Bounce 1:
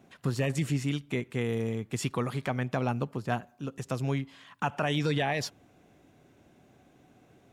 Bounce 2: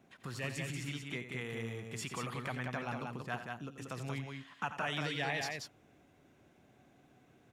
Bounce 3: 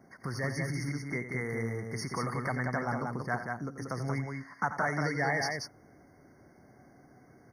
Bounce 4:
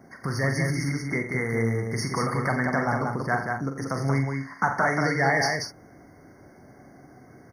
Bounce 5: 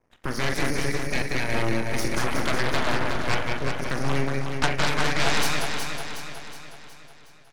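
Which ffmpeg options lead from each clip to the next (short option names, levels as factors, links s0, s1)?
-filter_complex "[0:a]acrossover=split=870[s0][s1];[s0]alimiter=level_in=1.78:limit=0.0631:level=0:latency=1:release=85,volume=0.562[s2];[s2][s1]amix=inputs=2:normalize=0,equalizer=f=1800:t=o:w=1.7:g=3,aecho=1:1:87.46|183.7:0.282|0.631,volume=0.447"
-af "afftfilt=real='re*eq(mod(floor(b*sr/1024/2200),2),0)':imag='im*eq(mod(floor(b*sr/1024/2200),2),0)':win_size=1024:overlap=0.75,volume=2.24"
-filter_complex "[0:a]asplit=2[s0][s1];[s1]adelay=44,volume=0.422[s2];[s0][s2]amix=inputs=2:normalize=0,volume=2.24"
-af "aresample=32000,aresample=44100,aeval=exprs='0.316*(cos(1*acos(clip(val(0)/0.316,-1,1)))-cos(1*PI/2))+0.1*(cos(3*acos(clip(val(0)/0.316,-1,1)))-cos(3*PI/2))+0.0631*(cos(8*acos(clip(val(0)/0.316,-1,1)))-cos(8*PI/2))':c=same,aecho=1:1:367|734|1101|1468|1835|2202:0.501|0.261|0.136|0.0705|0.0366|0.0191,volume=1.12"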